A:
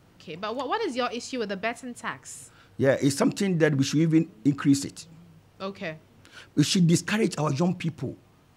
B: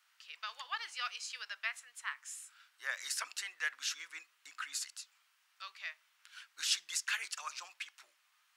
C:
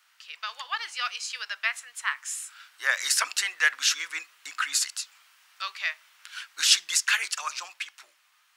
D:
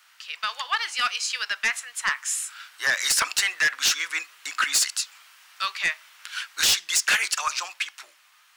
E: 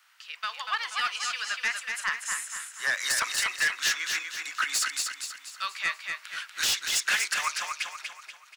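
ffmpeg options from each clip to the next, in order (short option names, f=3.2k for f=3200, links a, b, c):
-af "highpass=f=1.3k:w=0.5412,highpass=f=1.3k:w=1.3066,volume=-5dB"
-af "dynaudnorm=f=440:g=9:m=6dB,volume=8dB"
-af "alimiter=limit=-12dB:level=0:latency=1:release=443,aeval=exprs='0.251*sin(PI/2*2*val(0)/0.251)':c=same,volume=-3dB"
-filter_complex "[0:a]acrossover=split=210|1900[a][b][c];[b]crystalizer=i=5:c=0[d];[a][d][c]amix=inputs=3:normalize=0,aecho=1:1:240|480|720|960|1200:0.562|0.247|0.109|0.0479|0.0211,volume=-6.5dB"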